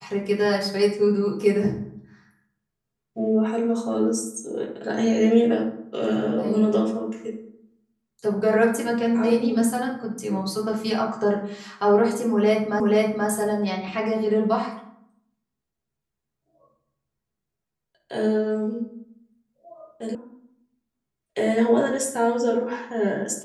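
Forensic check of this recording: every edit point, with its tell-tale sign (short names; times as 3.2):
12.8 repeat of the last 0.48 s
20.15 sound cut off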